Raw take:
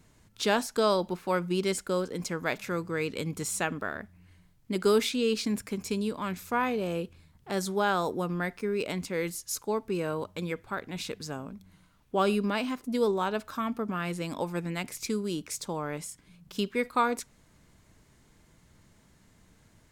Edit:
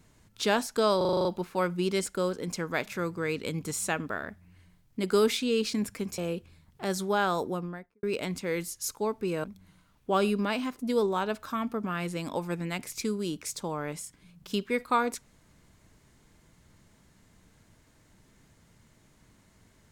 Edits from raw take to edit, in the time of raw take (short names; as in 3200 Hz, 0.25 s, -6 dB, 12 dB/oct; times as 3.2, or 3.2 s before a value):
0.97 stutter 0.04 s, 8 plays
5.9–6.85 cut
8.06–8.7 studio fade out
10.11–11.49 cut